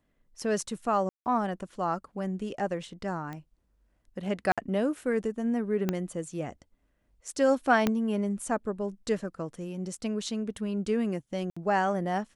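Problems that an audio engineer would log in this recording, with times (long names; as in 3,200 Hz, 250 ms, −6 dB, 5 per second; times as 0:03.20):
0:01.09–0:01.26: drop-out 169 ms
0:03.33: click −26 dBFS
0:04.52–0:04.58: drop-out 56 ms
0:05.89: click −14 dBFS
0:07.87: click −11 dBFS
0:11.50–0:11.56: drop-out 65 ms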